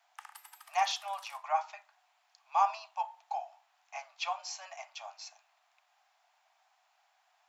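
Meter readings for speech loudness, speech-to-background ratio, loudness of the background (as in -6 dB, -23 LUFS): -35.5 LUFS, 19.0 dB, -54.5 LUFS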